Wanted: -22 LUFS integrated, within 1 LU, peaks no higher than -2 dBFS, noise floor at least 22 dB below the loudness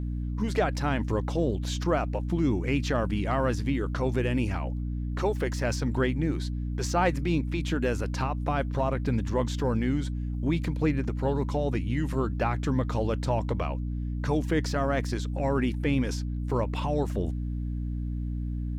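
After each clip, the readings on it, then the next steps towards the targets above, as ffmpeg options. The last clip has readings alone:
hum 60 Hz; harmonics up to 300 Hz; hum level -28 dBFS; loudness -28.5 LUFS; peak -12.0 dBFS; loudness target -22.0 LUFS
-> -af "bandreject=f=60:t=h:w=4,bandreject=f=120:t=h:w=4,bandreject=f=180:t=h:w=4,bandreject=f=240:t=h:w=4,bandreject=f=300:t=h:w=4"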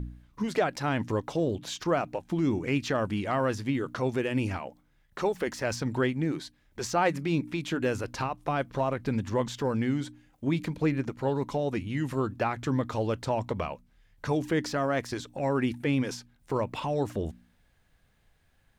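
hum none; loudness -30.0 LUFS; peak -13.5 dBFS; loudness target -22.0 LUFS
-> -af "volume=8dB"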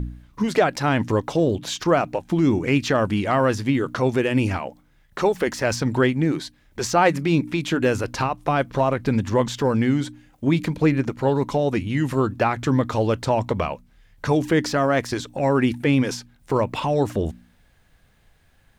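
loudness -22.0 LUFS; peak -5.5 dBFS; noise floor -59 dBFS

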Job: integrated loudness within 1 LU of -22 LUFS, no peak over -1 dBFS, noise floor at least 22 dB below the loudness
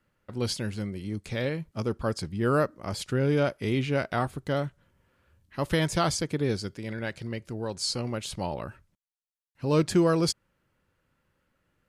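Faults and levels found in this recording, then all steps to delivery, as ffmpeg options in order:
loudness -29.0 LUFS; peak -11.5 dBFS; loudness target -22.0 LUFS
-> -af "volume=7dB"

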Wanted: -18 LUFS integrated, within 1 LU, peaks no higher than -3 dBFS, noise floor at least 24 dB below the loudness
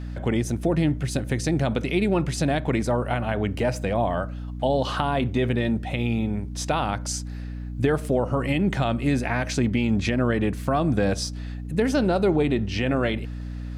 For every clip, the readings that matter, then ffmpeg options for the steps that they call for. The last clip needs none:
hum 60 Hz; harmonics up to 300 Hz; hum level -30 dBFS; loudness -24.5 LUFS; peak -8.0 dBFS; loudness target -18.0 LUFS
-> -af "bandreject=f=60:t=h:w=6,bandreject=f=120:t=h:w=6,bandreject=f=180:t=h:w=6,bandreject=f=240:t=h:w=6,bandreject=f=300:t=h:w=6"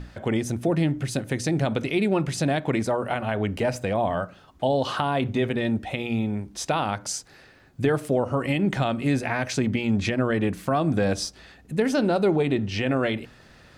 hum none; loudness -25.5 LUFS; peak -9.5 dBFS; loudness target -18.0 LUFS
-> -af "volume=7.5dB,alimiter=limit=-3dB:level=0:latency=1"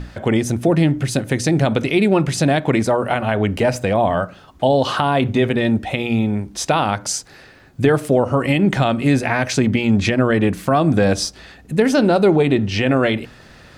loudness -18.0 LUFS; peak -3.0 dBFS; noise floor -45 dBFS

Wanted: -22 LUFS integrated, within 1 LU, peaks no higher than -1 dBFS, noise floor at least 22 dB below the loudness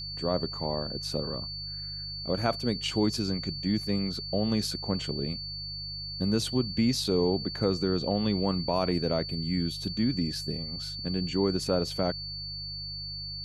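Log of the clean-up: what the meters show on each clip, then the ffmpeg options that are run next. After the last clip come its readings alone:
hum 50 Hz; harmonics up to 150 Hz; hum level -41 dBFS; steady tone 4500 Hz; tone level -36 dBFS; loudness -30.0 LUFS; peak -11.0 dBFS; loudness target -22.0 LUFS
-> -af "bandreject=f=50:t=h:w=4,bandreject=f=100:t=h:w=4,bandreject=f=150:t=h:w=4"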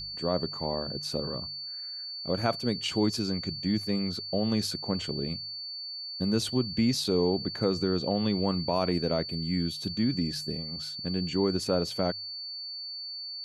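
hum none; steady tone 4500 Hz; tone level -36 dBFS
-> -af "bandreject=f=4.5k:w=30"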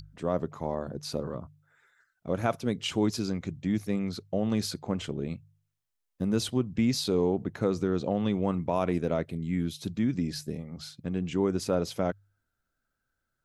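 steady tone none; loudness -30.5 LUFS; peak -11.0 dBFS; loudness target -22.0 LUFS
-> -af "volume=8.5dB"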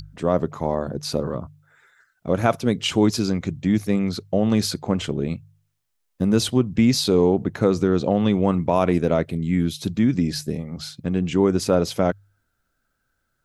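loudness -22.0 LUFS; peak -2.5 dBFS; noise floor -73 dBFS

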